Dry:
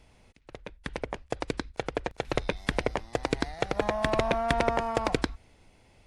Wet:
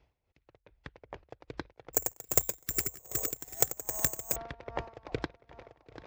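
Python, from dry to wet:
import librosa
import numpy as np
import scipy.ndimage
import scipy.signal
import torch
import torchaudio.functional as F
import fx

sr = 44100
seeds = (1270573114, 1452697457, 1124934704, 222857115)

y = scipy.signal.sosfilt(scipy.signal.butter(2, 65.0, 'highpass', fs=sr, output='sos'), x)
y = fx.spec_repair(y, sr, seeds[0], start_s=2.6, length_s=0.68, low_hz=420.0, high_hz=1200.0, source='both')
y = scipy.signal.sosfilt(scipy.signal.butter(4, 6400.0, 'lowpass', fs=sr, output='sos'), y)
y = fx.tilt_eq(y, sr, slope=-2.0)
y = fx.hpss(y, sr, part='harmonic', gain_db=-10)
y = fx.peak_eq(y, sr, hz=210.0, db=-12.0, octaves=0.82)
y = fx.echo_swing(y, sr, ms=987, ratio=3, feedback_pct=36, wet_db=-14.5)
y = fx.resample_bad(y, sr, factor=6, down='none', up='zero_stuff', at=(1.93, 4.36))
y = y * 10.0 ** (-18 * (0.5 - 0.5 * np.cos(2.0 * np.pi * 2.5 * np.arange(len(y)) / sr)) / 20.0)
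y = y * librosa.db_to_amplitude(-4.0)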